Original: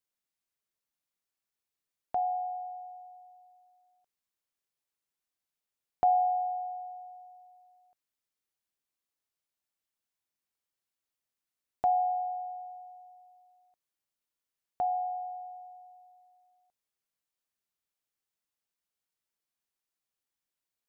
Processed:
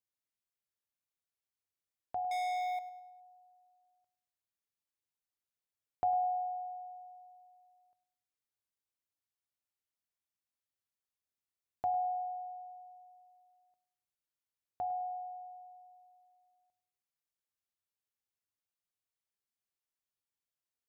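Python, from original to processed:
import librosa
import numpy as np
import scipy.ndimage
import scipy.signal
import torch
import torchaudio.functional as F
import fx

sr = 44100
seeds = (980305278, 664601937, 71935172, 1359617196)

y = fx.peak_eq(x, sr, hz=100.0, db=13.0, octaves=0.23)
y = fx.leveller(y, sr, passes=5, at=(2.31, 2.79))
y = fx.echo_feedback(y, sr, ms=103, feedback_pct=43, wet_db=-16)
y = F.gain(torch.from_numpy(y), -7.0).numpy()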